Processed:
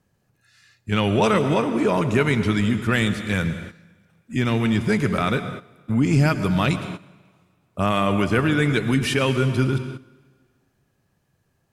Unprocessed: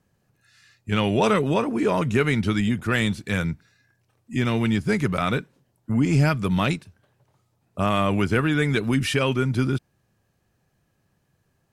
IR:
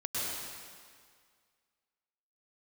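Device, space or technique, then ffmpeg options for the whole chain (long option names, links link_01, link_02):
keyed gated reverb: -filter_complex "[0:a]asplit=3[link_01][link_02][link_03];[1:a]atrim=start_sample=2205[link_04];[link_02][link_04]afir=irnorm=-1:irlink=0[link_05];[link_03]apad=whole_len=517235[link_06];[link_05][link_06]sidechaingate=range=-13dB:threshold=-48dB:ratio=16:detection=peak,volume=-13.5dB[link_07];[link_01][link_07]amix=inputs=2:normalize=0"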